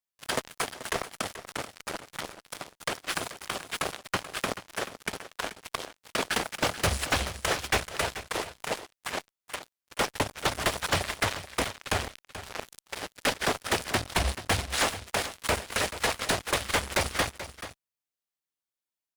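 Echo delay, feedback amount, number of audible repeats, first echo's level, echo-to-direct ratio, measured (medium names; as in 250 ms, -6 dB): 433 ms, no regular repeats, 1, -13.0 dB, -13.0 dB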